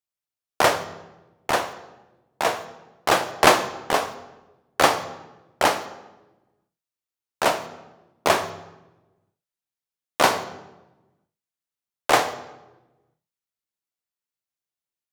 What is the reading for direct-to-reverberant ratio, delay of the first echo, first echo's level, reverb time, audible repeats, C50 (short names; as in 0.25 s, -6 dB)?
10.0 dB, none, none, 1.1 s, none, 13.0 dB